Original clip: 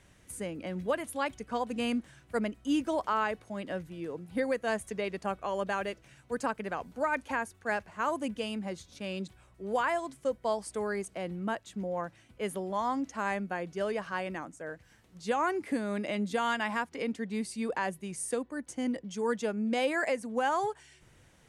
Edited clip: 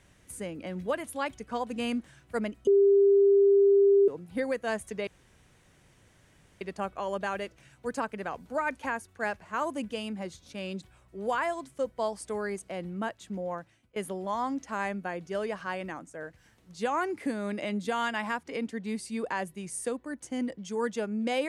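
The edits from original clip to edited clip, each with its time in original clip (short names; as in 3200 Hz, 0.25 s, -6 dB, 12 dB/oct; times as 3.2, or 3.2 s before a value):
2.67–4.08 bleep 398 Hz -17 dBFS
5.07 insert room tone 1.54 s
11.93–12.42 fade out, to -18.5 dB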